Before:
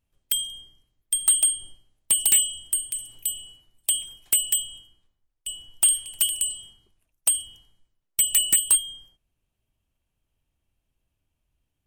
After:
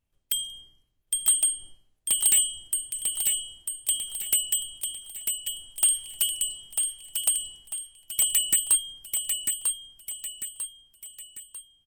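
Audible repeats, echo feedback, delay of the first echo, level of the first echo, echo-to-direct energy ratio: 4, 42%, 0.946 s, -5.0 dB, -4.0 dB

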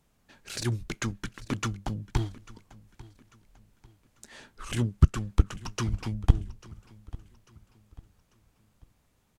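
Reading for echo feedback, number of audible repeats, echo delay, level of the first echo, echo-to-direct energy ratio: 39%, 2, 0.844 s, -20.5 dB, -20.0 dB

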